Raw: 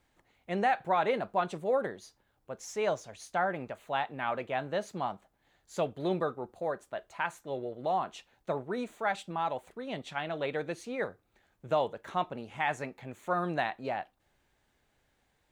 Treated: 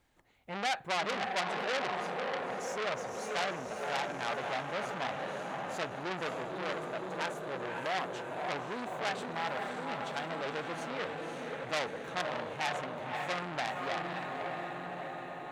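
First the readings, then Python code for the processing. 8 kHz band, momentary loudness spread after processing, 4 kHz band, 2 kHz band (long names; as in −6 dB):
+3.0 dB, 6 LU, +6.0 dB, +1.5 dB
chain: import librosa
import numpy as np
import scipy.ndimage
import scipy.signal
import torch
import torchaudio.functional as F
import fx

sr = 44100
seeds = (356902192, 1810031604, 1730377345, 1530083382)

y = fx.echo_diffused(x, sr, ms=550, feedback_pct=66, wet_db=-4)
y = fx.transformer_sat(y, sr, knee_hz=3900.0)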